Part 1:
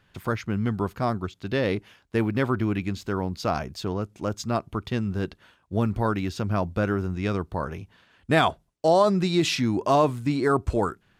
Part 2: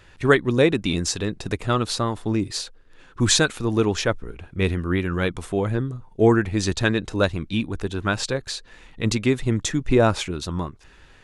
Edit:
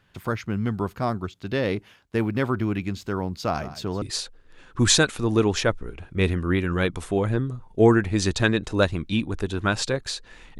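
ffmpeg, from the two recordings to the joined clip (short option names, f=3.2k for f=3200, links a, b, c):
-filter_complex "[0:a]asplit=3[a][b][c];[a]afade=t=out:st=3.58:d=0.02[d];[b]aecho=1:1:163:0.188,afade=t=in:st=3.58:d=0.02,afade=t=out:st=4.02:d=0.02[e];[c]afade=t=in:st=4.02:d=0.02[f];[d][e][f]amix=inputs=3:normalize=0,apad=whole_dur=10.59,atrim=end=10.59,atrim=end=4.022[g];[1:a]atrim=start=2.428:end=9[h];[g][h]acrossfade=d=0.004:c1=hsin:c2=hsin"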